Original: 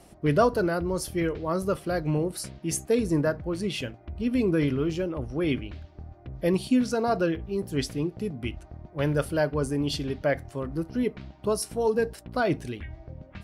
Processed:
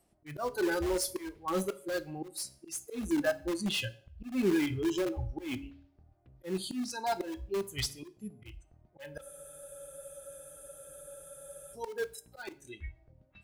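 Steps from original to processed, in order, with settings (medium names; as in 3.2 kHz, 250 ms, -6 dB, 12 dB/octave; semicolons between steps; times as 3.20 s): spectral noise reduction 22 dB; de-hum 139.5 Hz, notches 4; in parallel at -10 dB: integer overflow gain 28 dB; on the sum: slow attack 286 ms; on a send at -14 dB: reverberation RT60 0.45 s, pre-delay 6 ms; on the sum: spectral freeze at 9.23 s, 2.50 s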